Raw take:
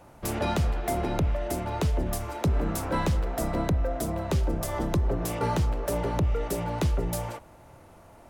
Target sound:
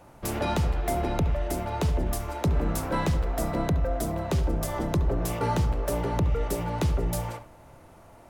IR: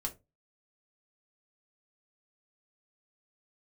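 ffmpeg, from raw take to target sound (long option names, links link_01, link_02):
-filter_complex "[0:a]asplit=2[link_01][link_02];[link_02]equalizer=frequency=8700:width_type=o:width=1.2:gain=-13[link_03];[1:a]atrim=start_sample=2205,adelay=69[link_04];[link_03][link_04]afir=irnorm=-1:irlink=0,volume=-12dB[link_05];[link_01][link_05]amix=inputs=2:normalize=0"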